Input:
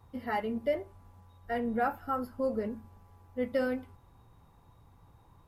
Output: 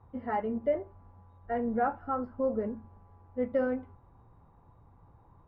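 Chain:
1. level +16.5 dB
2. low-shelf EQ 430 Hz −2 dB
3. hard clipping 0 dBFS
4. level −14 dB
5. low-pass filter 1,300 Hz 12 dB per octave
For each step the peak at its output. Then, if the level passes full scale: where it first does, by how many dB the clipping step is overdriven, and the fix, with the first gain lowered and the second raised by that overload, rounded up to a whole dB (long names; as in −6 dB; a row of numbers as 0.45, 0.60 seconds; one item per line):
−1.5, −2.5, −2.5, −16.5, −17.5 dBFS
no step passes full scale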